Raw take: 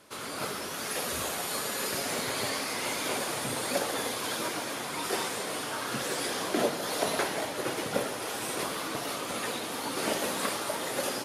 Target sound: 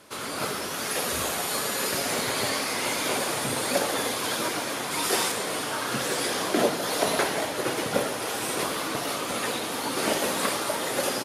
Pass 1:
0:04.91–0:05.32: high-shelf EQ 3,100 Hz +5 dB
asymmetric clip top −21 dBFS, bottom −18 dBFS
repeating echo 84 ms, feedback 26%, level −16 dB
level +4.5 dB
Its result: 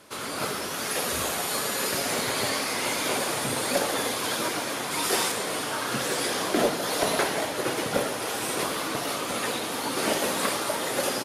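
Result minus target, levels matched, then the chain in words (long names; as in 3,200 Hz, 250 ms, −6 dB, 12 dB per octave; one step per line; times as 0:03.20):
asymmetric clip: distortion +7 dB
0:04.91–0:05.32: high-shelf EQ 3,100 Hz +5 dB
asymmetric clip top −14 dBFS, bottom −18 dBFS
repeating echo 84 ms, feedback 26%, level −16 dB
level +4.5 dB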